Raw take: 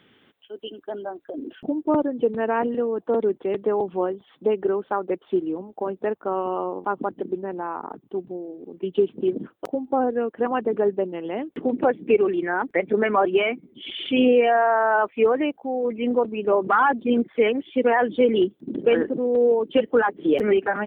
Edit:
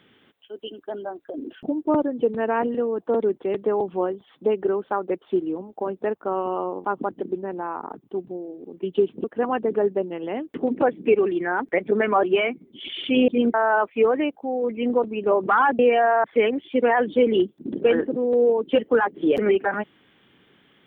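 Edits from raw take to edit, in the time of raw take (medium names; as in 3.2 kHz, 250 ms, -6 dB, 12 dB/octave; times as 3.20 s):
9.24–10.26 s: delete
14.30–14.75 s: swap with 17.00–17.26 s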